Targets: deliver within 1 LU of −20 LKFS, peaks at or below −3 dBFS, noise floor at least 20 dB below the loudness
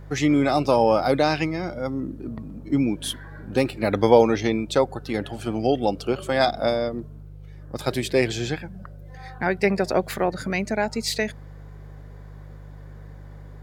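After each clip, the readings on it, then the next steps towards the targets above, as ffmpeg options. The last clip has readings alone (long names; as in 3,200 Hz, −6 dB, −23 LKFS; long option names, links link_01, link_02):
mains hum 50 Hz; hum harmonics up to 150 Hz; level of the hum −39 dBFS; integrated loudness −23.5 LKFS; sample peak −2.0 dBFS; target loudness −20.0 LKFS
→ -af "bandreject=frequency=50:width_type=h:width=4,bandreject=frequency=100:width_type=h:width=4,bandreject=frequency=150:width_type=h:width=4"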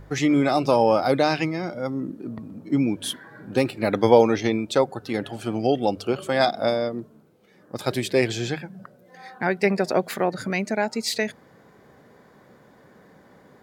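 mains hum none found; integrated loudness −23.5 LKFS; sample peak −2.0 dBFS; target loudness −20.0 LKFS
→ -af "volume=3.5dB,alimiter=limit=-3dB:level=0:latency=1"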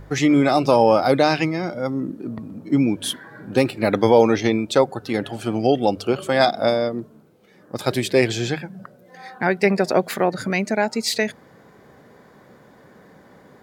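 integrated loudness −20.0 LKFS; sample peak −3.0 dBFS; background noise floor −51 dBFS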